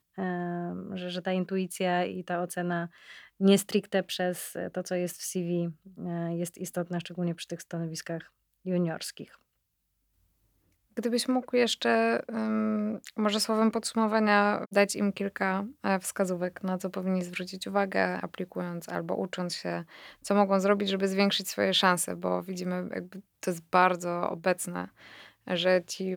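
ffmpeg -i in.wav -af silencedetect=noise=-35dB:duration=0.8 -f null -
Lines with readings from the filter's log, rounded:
silence_start: 9.24
silence_end: 10.97 | silence_duration: 1.74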